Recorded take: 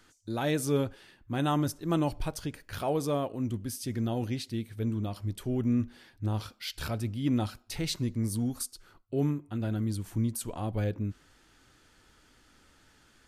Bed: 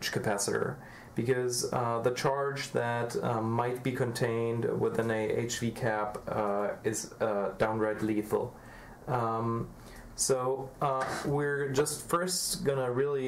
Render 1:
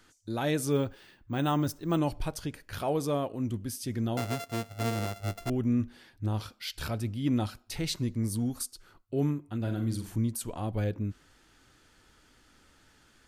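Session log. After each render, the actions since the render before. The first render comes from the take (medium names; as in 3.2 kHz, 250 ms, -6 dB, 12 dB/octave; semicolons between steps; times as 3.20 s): 0.72–1.98 s: careless resampling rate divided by 2×, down filtered, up hold; 4.17–5.50 s: sorted samples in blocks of 64 samples; 9.60–10.16 s: flutter echo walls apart 7.5 m, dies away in 0.35 s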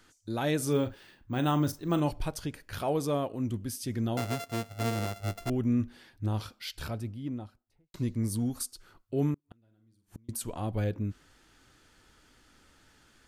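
0.57–2.11 s: doubling 40 ms -12 dB; 6.44–7.94 s: studio fade out; 9.34–10.29 s: inverted gate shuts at -30 dBFS, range -35 dB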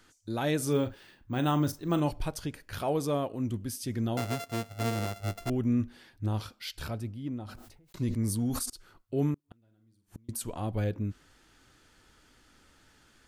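7.38–8.70 s: decay stretcher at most 51 dB/s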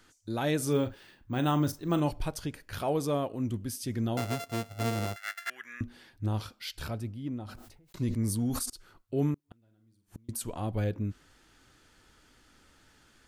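5.16–5.81 s: resonant high-pass 1.7 kHz, resonance Q 11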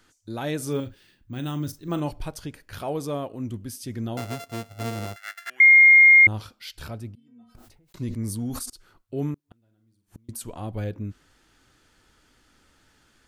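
0.80–1.88 s: peaking EQ 830 Hz -10.5 dB 2 oct; 5.60–6.27 s: bleep 2.13 kHz -9 dBFS; 7.15–7.55 s: inharmonic resonator 230 Hz, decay 0.48 s, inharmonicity 0.008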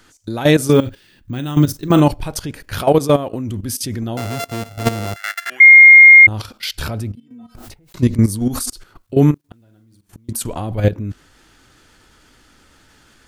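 level held to a coarse grid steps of 14 dB; loudness maximiser +18.5 dB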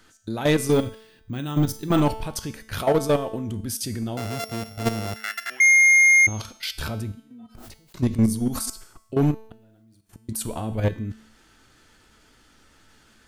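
in parallel at -4.5 dB: wavefolder -10 dBFS; on the sum: feedback comb 220 Hz, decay 0.76 s, harmonics all, mix 70%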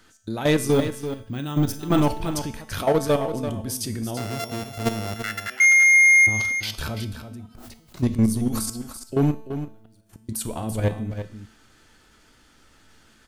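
on a send: delay 337 ms -10 dB; on the sum: Schroeder reverb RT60 0.35 s, combs from 29 ms, DRR 19 dB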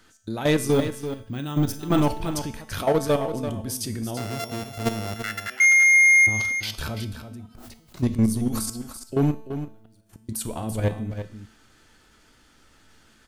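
trim -1 dB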